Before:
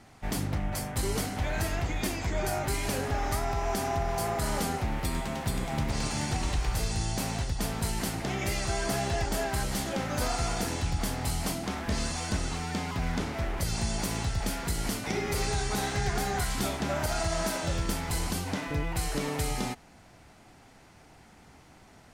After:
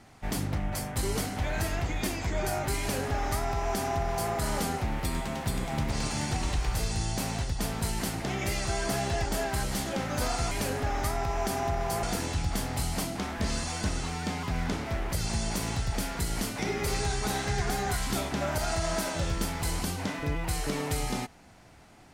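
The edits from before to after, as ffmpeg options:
-filter_complex "[0:a]asplit=3[a][b][c];[a]atrim=end=10.512[d];[b]atrim=start=2.788:end=4.312[e];[c]atrim=start=10.508[f];[d][e]acrossfade=d=0.004:c1=hsin:c2=hsin[g];[g][f]acrossfade=d=0.004:c1=hsin:c2=hsin"

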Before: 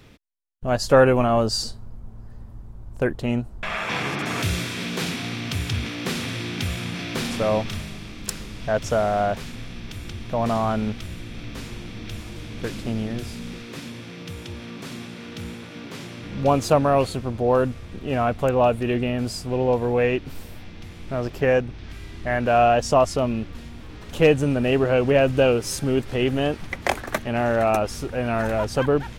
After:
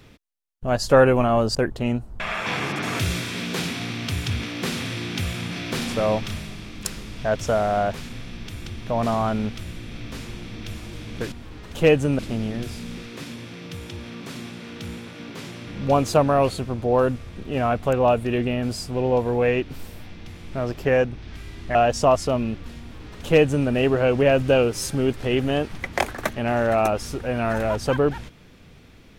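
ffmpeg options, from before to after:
-filter_complex "[0:a]asplit=5[a][b][c][d][e];[a]atrim=end=1.552[f];[b]atrim=start=2.978:end=12.752[g];[c]atrim=start=23.698:end=24.572[h];[d]atrim=start=12.748:end=22.312[i];[e]atrim=start=22.638[j];[f][g]acrossfade=d=0.004:c1=hsin:c2=hsin[k];[k][h]acrossfade=d=0.004:c1=hsin:c2=hsin[l];[l][i]acrossfade=d=0.004:c1=hsin:c2=hsin[m];[m][j]acrossfade=d=0.004:c1=hsin:c2=hsin"

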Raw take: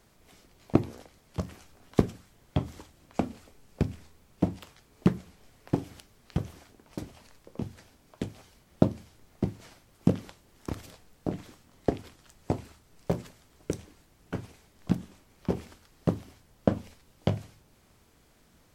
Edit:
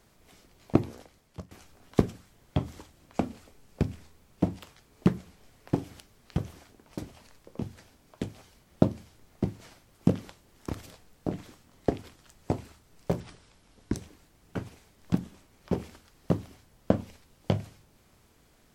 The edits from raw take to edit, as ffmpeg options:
-filter_complex "[0:a]asplit=4[a][b][c][d];[a]atrim=end=1.51,asetpts=PTS-STARTPTS,afade=t=out:st=0.81:d=0.7:c=qsin:silence=0.11885[e];[b]atrim=start=1.51:end=13.204,asetpts=PTS-STARTPTS,afade=t=in:d=0.004:c=hsin:silence=0.11885[f];[c]atrim=start=13.2:end=13.73,asetpts=PTS-STARTPTS,asetrate=30870,aresample=44100[g];[d]atrim=start=13.726[h];[e][f]concat=n=2:v=0:a=1[i];[i][g]acrossfade=d=0.004:c1=hsin:c2=hsin[j];[j][h]acrossfade=d=0.004:c1=hsin:c2=hsin"

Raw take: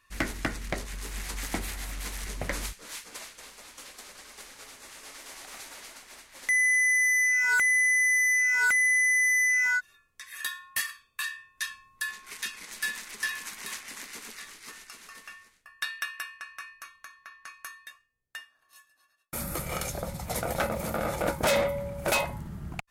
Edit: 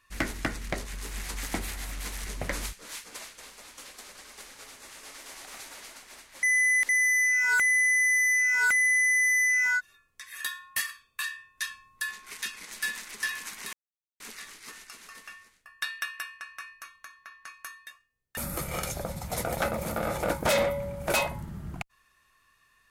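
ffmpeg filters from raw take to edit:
-filter_complex "[0:a]asplit=6[a][b][c][d][e][f];[a]atrim=end=6.432[g];[b]atrim=start=6.428:end=6.892,asetpts=PTS-STARTPTS,areverse[h];[c]atrim=start=6.888:end=13.73,asetpts=PTS-STARTPTS,afade=t=out:st=6.838:d=0.004:c=hsin[i];[d]atrim=start=13.73:end=14.2,asetpts=PTS-STARTPTS,volume=0[j];[e]atrim=start=14.2:end=18.372,asetpts=PTS-STARTPTS,afade=t=in:d=0.004:c=hsin[k];[f]atrim=start=19.348[l];[g][h]acrossfade=d=0.004:c1=hsin:c2=hsin[m];[i][j][k]concat=n=3:v=0:a=1[n];[m][n]acrossfade=d=0.004:c1=hsin:c2=hsin[o];[o][l]acrossfade=d=0.004:c1=hsin:c2=hsin"

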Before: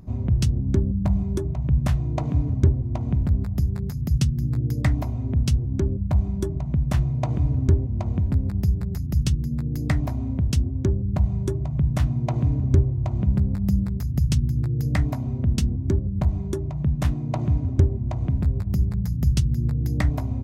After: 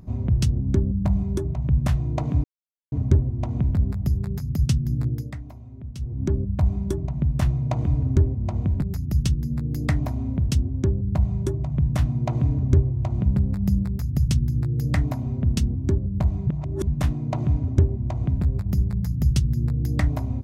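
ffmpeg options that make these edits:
-filter_complex "[0:a]asplit=7[a][b][c][d][e][f][g];[a]atrim=end=2.44,asetpts=PTS-STARTPTS,afade=t=out:st=2.436:d=0.004:c=hsin,apad=pad_dur=0.48[h];[b]atrim=start=2.44:end=4.86,asetpts=PTS-STARTPTS,afade=t=in:d=0.004:c=hsin,afade=t=out:st=2.13:d=0.29:silence=0.188365[i];[c]atrim=start=4.86:end=5.49,asetpts=PTS-STARTPTS,volume=-14.5dB[j];[d]atrim=start=5.49:end=8.342,asetpts=PTS-STARTPTS,afade=t=in:d=0.29:silence=0.188365[k];[e]atrim=start=8.828:end=16.482[l];[f]atrim=start=16.478:end=16.882,asetpts=PTS-STARTPTS,areverse[m];[g]atrim=start=16.878[n];[h][i][j][k]concat=n=4:v=0:a=1[o];[o][l]acrossfade=d=0.004:c1=hsin:c2=hsin[p];[p][m]acrossfade=d=0.004:c1=hsin:c2=hsin[q];[q][n]acrossfade=d=0.004:c1=hsin:c2=hsin"

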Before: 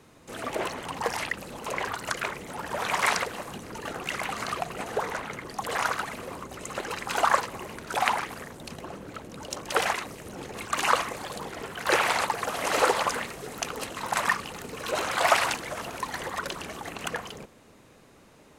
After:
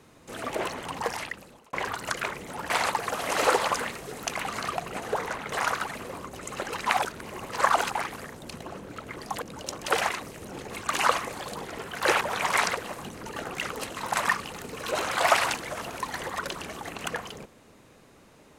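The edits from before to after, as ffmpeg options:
-filter_complex "[0:a]asplit=11[a][b][c][d][e][f][g][h][i][j][k];[a]atrim=end=1.73,asetpts=PTS-STARTPTS,afade=t=out:st=0.97:d=0.76[l];[b]atrim=start=1.73:end=2.702,asetpts=PTS-STARTPTS,afade=t=in:d=0.004:c=hsin[m];[c]atrim=start=12.048:end=13.702[n];[d]atrim=start=4.188:end=5.362[o];[e]atrim=start=5.698:end=7.042[p];[f]atrim=start=7.038:end=8.132,asetpts=PTS-STARTPTS,areverse[q];[g]atrim=start=8.128:end=9.262[r];[h]atrim=start=5.358:end=5.702[s];[i]atrim=start=9.258:end=12.052[t];[j]atrim=start=2.698:end=4.192[u];[k]atrim=start=13.698[v];[l][m]concat=n=2:v=0:a=1[w];[w][n]acrossfade=d=0.004:c1=hsin:c2=hsin[x];[x][o]acrossfade=d=0.004:c1=hsin:c2=hsin[y];[y][p]acrossfade=d=0.004:c1=hsin:c2=hsin[z];[z][q]acrossfade=d=0.004:c1=hsin:c2=hsin[aa];[aa][r]acrossfade=d=0.004:c1=hsin:c2=hsin[ab];[ab][s]acrossfade=d=0.004:c1=hsin:c2=hsin[ac];[ac][t]acrossfade=d=0.004:c1=hsin:c2=hsin[ad];[ad][u]acrossfade=d=0.004:c1=hsin:c2=hsin[ae];[ae][v]acrossfade=d=0.004:c1=hsin:c2=hsin"

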